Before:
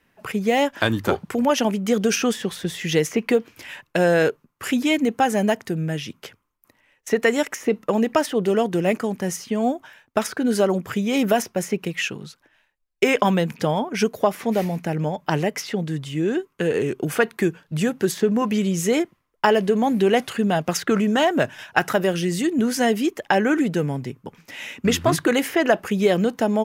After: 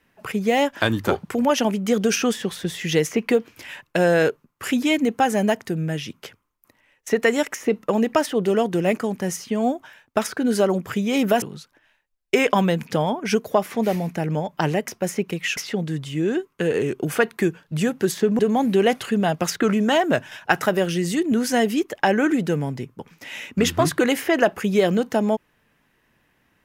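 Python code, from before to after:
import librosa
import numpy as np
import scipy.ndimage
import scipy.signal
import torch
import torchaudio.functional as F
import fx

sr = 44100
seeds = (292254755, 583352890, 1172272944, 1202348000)

y = fx.edit(x, sr, fx.move(start_s=11.42, length_s=0.69, to_s=15.57),
    fx.cut(start_s=18.39, length_s=1.27), tone=tone)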